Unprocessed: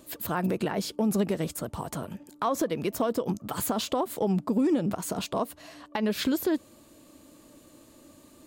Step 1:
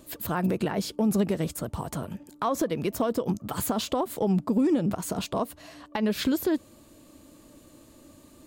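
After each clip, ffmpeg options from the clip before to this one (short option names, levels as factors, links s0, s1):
-af "lowshelf=f=130:g=7"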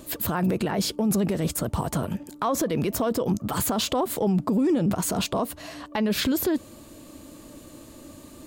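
-af "alimiter=limit=0.0631:level=0:latency=1:release=17,volume=2.37"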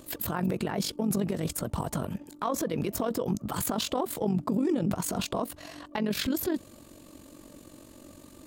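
-af "tremolo=f=46:d=0.667,volume=0.794"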